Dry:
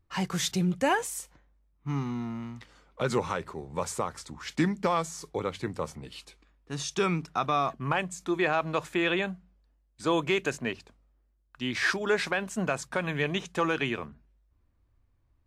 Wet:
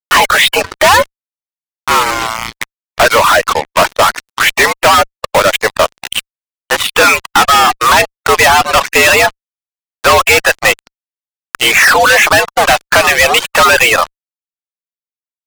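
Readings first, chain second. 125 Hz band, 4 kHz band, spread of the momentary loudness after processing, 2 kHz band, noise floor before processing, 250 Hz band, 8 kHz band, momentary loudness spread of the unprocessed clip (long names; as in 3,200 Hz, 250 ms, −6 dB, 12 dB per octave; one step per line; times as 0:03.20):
+6.5 dB, +24.0 dB, 10 LU, +23.5 dB, −70 dBFS, +5.5 dB, +22.5 dB, 12 LU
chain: single-sideband voice off tune +86 Hz 540–3,000 Hz
fuzz pedal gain 53 dB, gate −46 dBFS
reverb reduction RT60 0.71 s
level +8.5 dB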